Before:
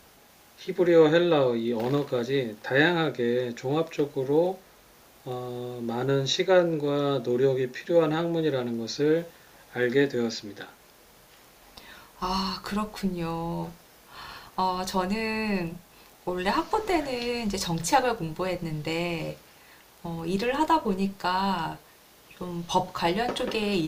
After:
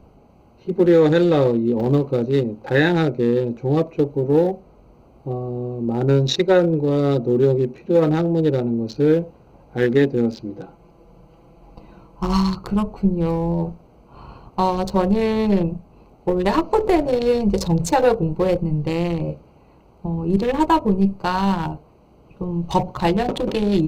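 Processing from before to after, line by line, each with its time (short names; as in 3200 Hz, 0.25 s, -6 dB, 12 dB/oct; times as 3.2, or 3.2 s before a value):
10.44–12.55 comb 6 ms, depth 59%
13.07–18.6 dynamic EQ 490 Hz, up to +7 dB, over -41 dBFS, Q 1.9
whole clip: Wiener smoothing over 25 samples; low shelf 250 Hz +9 dB; maximiser +10.5 dB; gain -5.5 dB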